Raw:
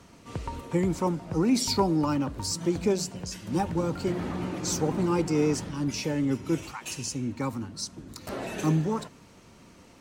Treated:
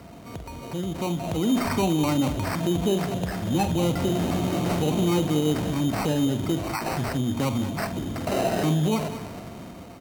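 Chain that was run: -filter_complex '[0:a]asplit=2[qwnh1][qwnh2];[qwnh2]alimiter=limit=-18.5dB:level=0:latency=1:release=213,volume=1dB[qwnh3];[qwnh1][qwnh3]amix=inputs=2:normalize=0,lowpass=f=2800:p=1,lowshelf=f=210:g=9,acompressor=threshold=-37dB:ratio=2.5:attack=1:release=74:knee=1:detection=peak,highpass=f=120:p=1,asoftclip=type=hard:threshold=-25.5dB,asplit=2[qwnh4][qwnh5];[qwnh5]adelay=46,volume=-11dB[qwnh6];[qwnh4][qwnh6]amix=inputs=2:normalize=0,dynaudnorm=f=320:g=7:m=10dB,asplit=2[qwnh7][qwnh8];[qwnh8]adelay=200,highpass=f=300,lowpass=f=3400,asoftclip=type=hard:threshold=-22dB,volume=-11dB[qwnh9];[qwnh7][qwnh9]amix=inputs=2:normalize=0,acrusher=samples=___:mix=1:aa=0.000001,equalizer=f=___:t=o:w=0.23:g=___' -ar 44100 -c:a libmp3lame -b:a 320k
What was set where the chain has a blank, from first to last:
13, 680, 10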